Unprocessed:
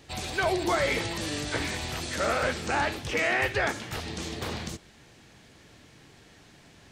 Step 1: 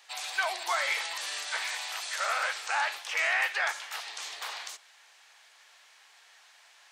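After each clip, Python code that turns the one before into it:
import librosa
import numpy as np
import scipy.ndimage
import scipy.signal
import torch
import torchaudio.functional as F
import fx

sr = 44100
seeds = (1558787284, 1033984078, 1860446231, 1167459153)

y = scipy.signal.sosfilt(scipy.signal.butter(4, 810.0, 'highpass', fs=sr, output='sos'), x)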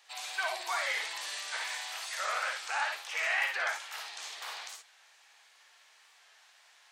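y = fx.room_early_taps(x, sr, ms=(56, 67), db=(-4.5, -8.0))
y = fx.record_warp(y, sr, rpm=45.0, depth_cents=100.0)
y = y * 10.0 ** (-5.0 / 20.0)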